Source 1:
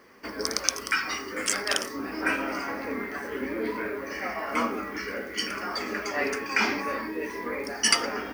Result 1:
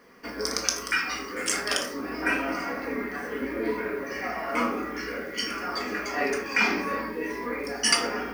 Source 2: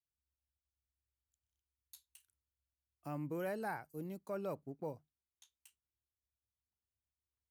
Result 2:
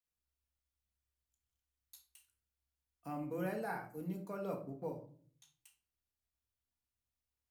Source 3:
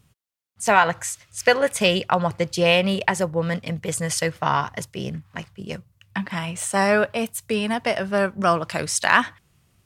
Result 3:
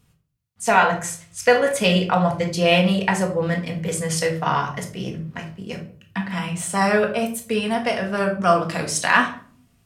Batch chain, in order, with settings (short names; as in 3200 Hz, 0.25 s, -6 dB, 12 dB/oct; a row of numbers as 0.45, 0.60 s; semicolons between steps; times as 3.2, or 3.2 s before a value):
shoebox room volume 470 m³, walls furnished, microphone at 1.8 m; gain -2 dB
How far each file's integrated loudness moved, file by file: +0.5, +0.5, +1.0 LU